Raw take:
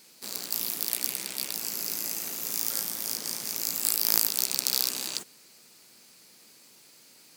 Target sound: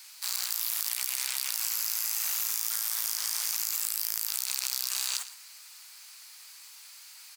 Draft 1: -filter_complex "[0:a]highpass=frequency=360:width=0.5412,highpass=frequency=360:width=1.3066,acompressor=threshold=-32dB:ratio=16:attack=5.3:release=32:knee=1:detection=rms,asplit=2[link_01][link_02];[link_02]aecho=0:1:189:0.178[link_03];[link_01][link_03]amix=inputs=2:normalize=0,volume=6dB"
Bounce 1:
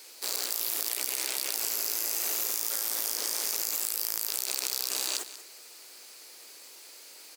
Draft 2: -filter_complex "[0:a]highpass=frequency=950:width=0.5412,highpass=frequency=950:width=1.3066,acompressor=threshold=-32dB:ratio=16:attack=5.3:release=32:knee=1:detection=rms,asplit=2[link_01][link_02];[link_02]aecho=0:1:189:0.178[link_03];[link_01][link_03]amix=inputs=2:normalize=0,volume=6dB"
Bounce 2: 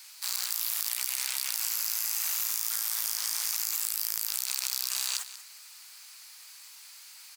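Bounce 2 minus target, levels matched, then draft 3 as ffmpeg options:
echo 73 ms late
-filter_complex "[0:a]highpass=frequency=950:width=0.5412,highpass=frequency=950:width=1.3066,acompressor=threshold=-32dB:ratio=16:attack=5.3:release=32:knee=1:detection=rms,asplit=2[link_01][link_02];[link_02]aecho=0:1:116:0.178[link_03];[link_01][link_03]amix=inputs=2:normalize=0,volume=6dB"

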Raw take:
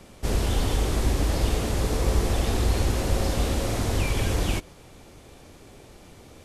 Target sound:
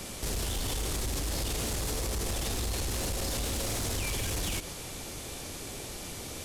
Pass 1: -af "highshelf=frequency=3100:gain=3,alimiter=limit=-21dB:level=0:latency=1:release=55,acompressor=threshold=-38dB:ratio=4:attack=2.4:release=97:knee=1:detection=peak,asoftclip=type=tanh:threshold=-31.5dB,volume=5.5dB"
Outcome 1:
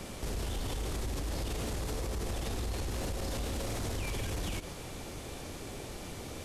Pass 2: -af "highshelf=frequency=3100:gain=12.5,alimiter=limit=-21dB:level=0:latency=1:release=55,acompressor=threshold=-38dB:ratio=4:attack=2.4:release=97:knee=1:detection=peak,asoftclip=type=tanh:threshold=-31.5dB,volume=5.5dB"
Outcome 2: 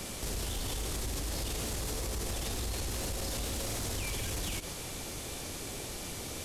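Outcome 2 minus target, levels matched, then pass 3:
downward compressor: peak gain reduction +4.5 dB
-af "highshelf=frequency=3100:gain=12.5,alimiter=limit=-21dB:level=0:latency=1:release=55,acompressor=threshold=-32dB:ratio=4:attack=2.4:release=97:knee=1:detection=peak,asoftclip=type=tanh:threshold=-31.5dB,volume=5.5dB"

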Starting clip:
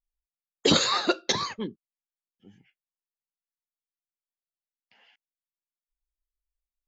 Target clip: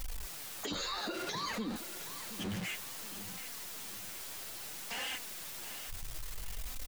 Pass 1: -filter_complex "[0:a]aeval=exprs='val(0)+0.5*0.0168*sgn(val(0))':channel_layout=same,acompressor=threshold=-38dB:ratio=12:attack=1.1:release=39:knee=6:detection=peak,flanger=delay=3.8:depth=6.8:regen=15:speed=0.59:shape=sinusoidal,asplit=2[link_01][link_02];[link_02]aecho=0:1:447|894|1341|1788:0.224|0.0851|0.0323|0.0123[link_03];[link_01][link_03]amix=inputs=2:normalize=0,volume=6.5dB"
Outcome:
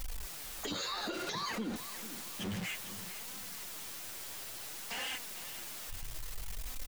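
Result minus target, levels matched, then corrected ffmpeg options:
echo 280 ms early
-filter_complex "[0:a]aeval=exprs='val(0)+0.5*0.0168*sgn(val(0))':channel_layout=same,acompressor=threshold=-38dB:ratio=12:attack=1.1:release=39:knee=6:detection=peak,flanger=delay=3.8:depth=6.8:regen=15:speed=0.59:shape=sinusoidal,asplit=2[link_01][link_02];[link_02]aecho=0:1:727|1454|2181|2908:0.224|0.0851|0.0323|0.0123[link_03];[link_01][link_03]amix=inputs=2:normalize=0,volume=6.5dB"

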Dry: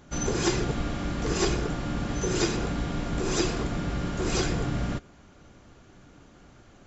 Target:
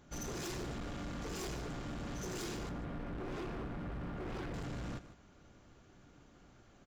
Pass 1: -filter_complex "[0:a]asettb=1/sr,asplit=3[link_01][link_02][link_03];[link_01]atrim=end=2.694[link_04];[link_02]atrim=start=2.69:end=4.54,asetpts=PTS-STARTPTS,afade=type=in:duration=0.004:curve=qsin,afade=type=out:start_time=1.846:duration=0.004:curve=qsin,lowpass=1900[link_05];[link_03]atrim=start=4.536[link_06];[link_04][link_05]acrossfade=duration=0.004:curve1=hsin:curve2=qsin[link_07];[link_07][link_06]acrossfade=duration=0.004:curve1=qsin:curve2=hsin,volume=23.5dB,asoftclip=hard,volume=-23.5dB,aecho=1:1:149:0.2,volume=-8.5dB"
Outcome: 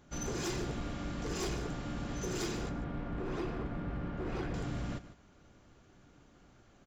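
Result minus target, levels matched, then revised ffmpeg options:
gain into a clipping stage and back: distortion −7 dB
-filter_complex "[0:a]asettb=1/sr,asplit=3[link_01][link_02][link_03];[link_01]atrim=end=2.694[link_04];[link_02]atrim=start=2.69:end=4.54,asetpts=PTS-STARTPTS,afade=type=in:duration=0.004:curve=qsin,afade=type=out:start_time=1.846:duration=0.004:curve=qsin,lowpass=1900[link_05];[link_03]atrim=start=4.536[link_06];[link_04][link_05]acrossfade=duration=0.004:curve1=hsin:curve2=qsin[link_07];[link_07][link_06]acrossfade=duration=0.004:curve1=qsin:curve2=hsin,volume=31dB,asoftclip=hard,volume=-31dB,aecho=1:1:149:0.2,volume=-8.5dB"

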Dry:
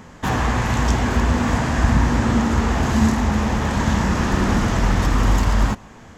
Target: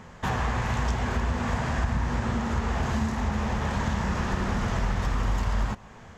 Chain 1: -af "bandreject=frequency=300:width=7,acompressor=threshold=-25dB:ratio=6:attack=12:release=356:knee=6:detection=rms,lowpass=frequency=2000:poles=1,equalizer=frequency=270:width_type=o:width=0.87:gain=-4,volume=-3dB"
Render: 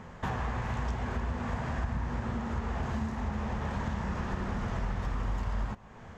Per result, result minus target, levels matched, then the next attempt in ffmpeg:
downward compressor: peak gain reduction +6 dB; 4,000 Hz band −4.0 dB
-af "bandreject=frequency=300:width=7,acompressor=threshold=-17.5dB:ratio=6:attack=12:release=356:knee=6:detection=rms,lowpass=frequency=2000:poles=1,equalizer=frequency=270:width_type=o:width=0.87:gain=-4,volume=-3dB"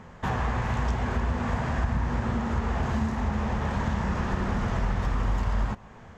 4,000 Hz band −4.0 dB
-af "bandreject=frequency=300:width=7,acompressor=threshold=-17.5dB:ratio=6:attack=12:release=356:knee=6:detection=rms,lowpass=frequency=5300:poles=1,equalizer=frequency=270:width_type=o:width=0.87:gain=-4,volume=-3dB"

